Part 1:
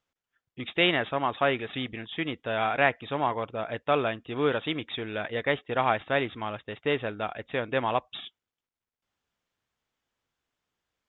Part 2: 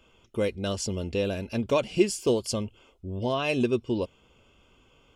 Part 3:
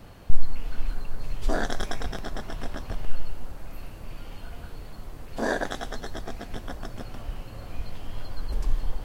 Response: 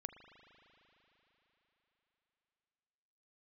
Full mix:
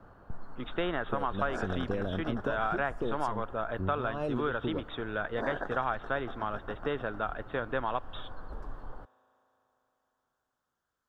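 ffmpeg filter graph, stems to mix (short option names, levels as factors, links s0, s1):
-filter_complex "[0:a]highshelf=f=3000:g=8.5,volume=0.668,asplit=3[s0][s1][s2];[s1]volume=0.266[s3];[1:a]tiltshelf=f=970:g=6,acompressor=threshold=0.0631:ratio=6,adelay=750,volume=0.75[s4];[2:a]bass=f=250:g=-4,treble=f=4000:g=-14,volume=0.531[s5];[s2]apad=whole_len=260604[s6];[s4][s6]sidechaincompress=threshold=0.0355:ratio=8:attack=24:release=255[s7];[3:a]atrim=start_sample=2205[s8];[s3][s8]afir=irnorm=-1:irlink=0[s9];[s0][s7][s5][s9]amix=inputs=4:normalize=0,highshelf=f=1800:t=q:w=3:g=-7.5,acrossover=split=94|1900[s10][s11][s12];[s10]acompressor=threshold=0.0141:ratio=4[s13];[s11]acompressor=threshold=0.0355:ratio=4[s14];[s12]acompressor=threshold=0.00891:ratio=4[s15];[s13][s14][s15]amix=inputs=3:normalize=0"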